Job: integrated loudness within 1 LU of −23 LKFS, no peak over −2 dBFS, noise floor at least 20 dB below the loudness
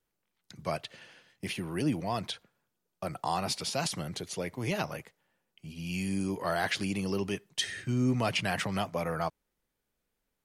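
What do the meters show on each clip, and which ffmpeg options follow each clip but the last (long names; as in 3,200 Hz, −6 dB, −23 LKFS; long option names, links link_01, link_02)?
integrated loudness −33.0 LKFS; sample peak −16.0 dBFS; target loudness −23.0 LKFS
→ -af "volume=10dB"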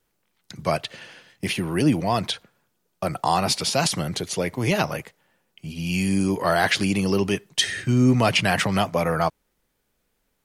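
integrated loudness −23.0 LKFS; sample peak −6.0 dBFS; background noise floor −73 dBFS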